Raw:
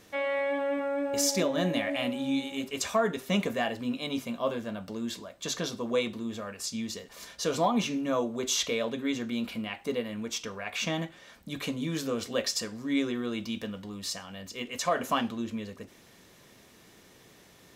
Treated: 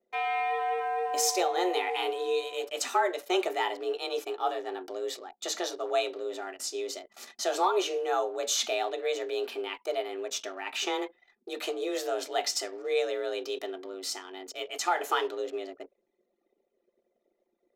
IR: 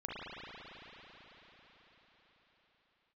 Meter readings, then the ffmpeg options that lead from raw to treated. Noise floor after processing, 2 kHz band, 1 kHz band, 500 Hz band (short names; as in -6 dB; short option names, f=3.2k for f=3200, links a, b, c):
-78 dBFS, 0.0 dB, +5.5 dB, +1.5 dB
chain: -af "afreqshift=180,anlmdn=0.0251"